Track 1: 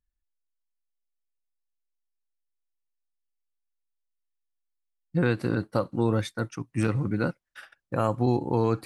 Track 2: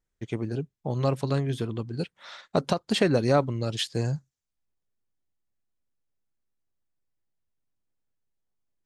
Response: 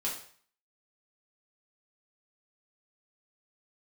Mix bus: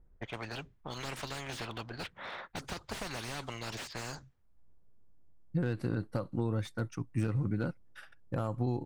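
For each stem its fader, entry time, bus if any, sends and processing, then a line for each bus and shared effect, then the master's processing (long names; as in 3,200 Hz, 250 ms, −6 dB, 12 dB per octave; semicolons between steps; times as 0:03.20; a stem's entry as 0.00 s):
−6.0 dB, 0.40 s, no send, downward compressor 3 to 1, threshold −26 dBFS, peak gain reduction 6.5 dB
−8.0 dB, 0.00 s, no send, low-pass that shuts in the quiet parts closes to 900 Hz, open at −21 dBFS; every bin compressed towards the loudest bin 10 to 1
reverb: not used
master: low-shelf EQ 150 Hz +9 dB; slew-rate limiting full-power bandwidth 32 Hz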